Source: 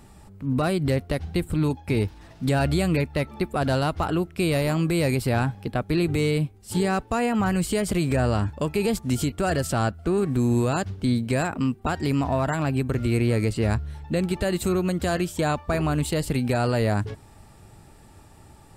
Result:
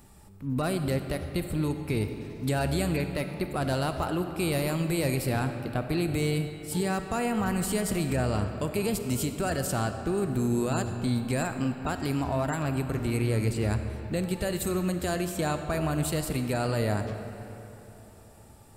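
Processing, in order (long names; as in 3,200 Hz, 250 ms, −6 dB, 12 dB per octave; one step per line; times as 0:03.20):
high-shelf EQ 9,500 Hz +12 dB
comb and all-pass reverb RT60 3.4 s, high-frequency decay 0.65×, pre-delay 10 ms, DRR 7 dB
level −5.5 dB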